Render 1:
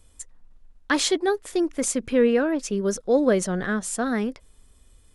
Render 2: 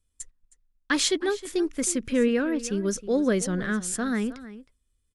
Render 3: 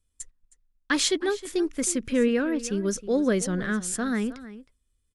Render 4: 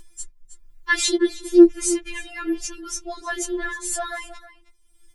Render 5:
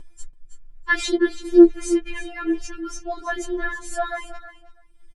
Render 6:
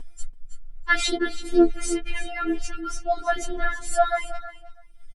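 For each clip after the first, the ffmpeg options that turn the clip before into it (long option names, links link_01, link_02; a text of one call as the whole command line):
ffmpeg -i in.wav -filter_complex "[0:a]agate=range=-19dB:threshold=-42dB:ratio=16:detection=peak,equalizer=frequency=710:width_type=o:width=1.3:gain=-9,asplit=2[link_01][link_02];[link_02]adelay=314.9,volume=-15dB,highshelf=frequency=4000:gain=-7.08[link_03];[link_01][link_03]amix=inputs=2:normalize=0" out.wav
ffmpeg -i in.wav -af anull out.wav
ffmpeg -i in.wav -af "equalizer=frequency=68:width=0.42:gain=10,acompressor=mode=upward:threshold=-35dB:ratio=2.5,afftfilt=real='re*4*eq(mod(b,16),0)':imag='im*4*eq(mod(b,16),0)':win_size=2048:overlap=0.75,volume=5.5dB" out.wav
ffmpeg -i in.wav -af "lowpass=frequency=1400:poles=1,aecho=1:1:7.1:0.33,aecho=1:1:333:0.168,volume=3.5dB" out.wav
ffmpeg -i in.wav -af "aecho=1:1:4.3:0.67,volume=1.5dB" out.wav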